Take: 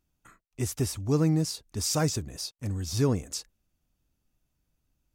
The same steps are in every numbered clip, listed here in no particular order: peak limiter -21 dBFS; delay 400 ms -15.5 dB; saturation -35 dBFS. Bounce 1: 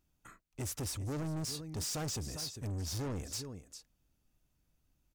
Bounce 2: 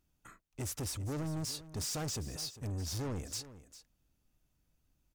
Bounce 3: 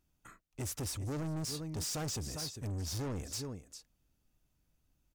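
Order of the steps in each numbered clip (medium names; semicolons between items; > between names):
peak limiter > delay > saturation; peak limiter > saturation > delay; delay > peak limiter > saturation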